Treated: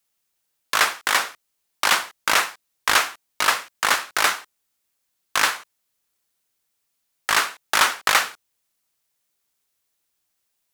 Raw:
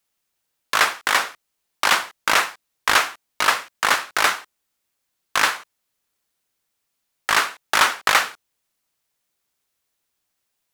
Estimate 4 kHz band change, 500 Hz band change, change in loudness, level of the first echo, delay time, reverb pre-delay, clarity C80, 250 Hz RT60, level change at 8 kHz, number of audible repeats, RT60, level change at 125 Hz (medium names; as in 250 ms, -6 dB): 0.0 dB, -2.0 dB, -1.0 dB, no echo, no echo, no reverb, no reverb, no reverb, +1.5 dB, no echo, no reverb, -2.0 dB